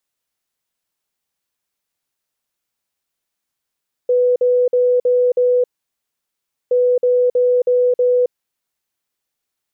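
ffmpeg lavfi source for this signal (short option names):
-f lavfi -i "aevalsrc='0.282*sin(2*PI*495*t)*clip(min(mod(mod(t,2.62),0.32),0.27-mod(mod(t,2.62),0.32))/0.005,0,1)*lt(mod(t,2.62),1.6)':d=5.24:s=44100"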